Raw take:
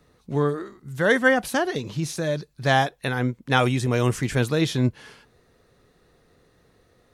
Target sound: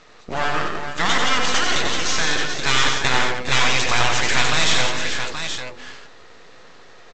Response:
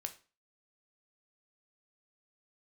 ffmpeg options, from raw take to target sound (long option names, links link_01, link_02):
-filter_complex "[0:a]bandreject=frequency=50:width_type=h:width=6,bandreject=frequency=100:width_type=h:width=6,bandreject=frequency=150:width_type=h:width=6,bandreject=frequency=200:width_type=h:width=6,bandreject=frequency=250:width_type=h:width=6,bandreject=frequency=300:width_type=h:width=6,bandreject=frequency=350:width_type=h:width=6,bandreject=frequency=400:width_type=h:width=6,bandreject=frequency=450:width_type=h:width=6,bandreject=frequency=500:width_type=h:width=6,afftfilt=real='re*lt(hypot(re,im),0.158)':imag='im*lt(hypot(re,im),0.158)':win_size=1024:overlap=0.75,lowshelf=frequency=210:gain=-7.5,asplit=2[link_01][link_02];[link_02]highpass=frequency=720:poles=1,volume=15dB,asoftclip=type=tanh:threshold=-14.5dB[link_03];[link_01][link_03]amix=inputs=2:normalize=0,lowpass=frequency=4200:poles=1,volume=-6dB,aresample=16000,aeval=exprs='max(val(0),0)':channel_layout=same,aresample=44100,acontrast=85,asplit=2[link_04][link_05];[link_05]aecho=0:1:92|174|404|437|827:0.562|0.422|0.188|0.299|0.422[link_06];[link_04][link_06]amix=inputs=2:normalize=0,volume=4dB"